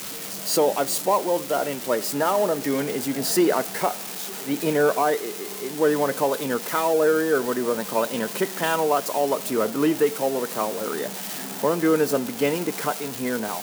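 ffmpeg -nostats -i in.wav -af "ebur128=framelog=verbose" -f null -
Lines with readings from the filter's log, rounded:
Integrated loudness:
  I:         -23.5 LUFS
  Threshold: -33.5 LUFS
Loudness range:
  LRA:         1.5 LU
  Threshold: -43.4 LUFS
  LRA low:   -24.1 LUFS
  LRA high:  -22.6 LUFS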